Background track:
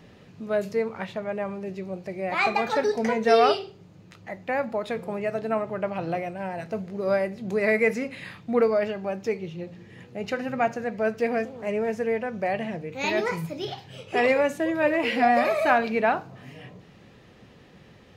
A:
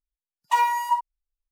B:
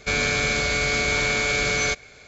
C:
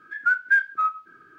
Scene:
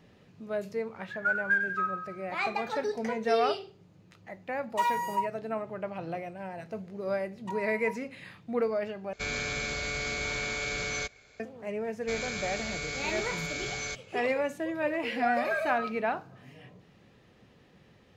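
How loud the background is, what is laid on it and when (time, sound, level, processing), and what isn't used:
background track -7.5 dB
0.99 s: add C -7.5 dB + feedback delay 93 ms, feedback 53%, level -7 dB
4.26 s: add A -7 dB
6.96 s: add A -17.5 dB + low-pass that closes with the level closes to 1.2 kHz, closed at -19 dBFS
9.13 s: replace with B -10.5 dB
12.01 s: add B -14 dB + treble shelf 6.5 kHz +6 dB
15.00 s: add C -15 dB

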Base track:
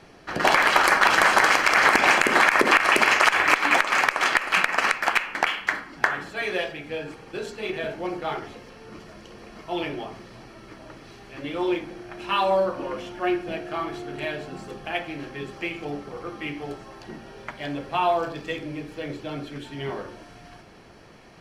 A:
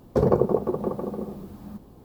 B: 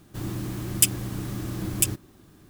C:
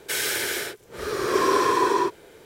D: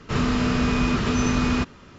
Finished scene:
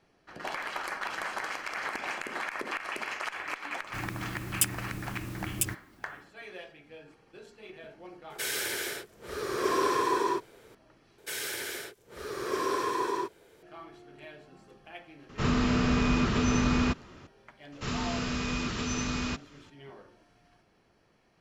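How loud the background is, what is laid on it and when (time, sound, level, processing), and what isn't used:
base track -17.5 dB
3.79 s: add B -7 dB, fades 0.10 s
8.30 s: add C -6.5 dB
11.18 s: replace with C -9.5 dB
15.29 s: add D -4 dB
17.72 s: add D -11.5 dB + treble shelf 2.5 kHz +10 dB
not used: A

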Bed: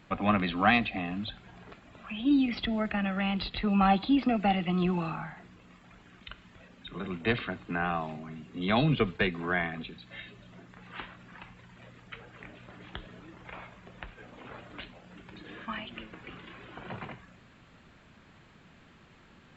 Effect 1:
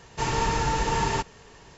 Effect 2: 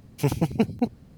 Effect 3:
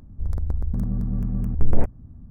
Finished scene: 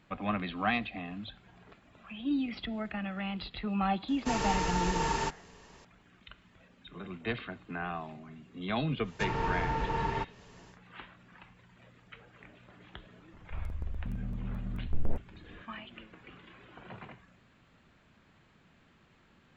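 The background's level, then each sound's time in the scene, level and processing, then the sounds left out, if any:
bed -6.5 dB
4.08 s: add 1 -5.5 dB + peaking EQ 110 Hz -8 dB
9.02 s: add 1 -6.5 dB, fades 0.10 s + low-pass that closes with the level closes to 2.5 kHz, closed at -24 dBFS
13.32 s: add 3 -12 dB
not used: 2

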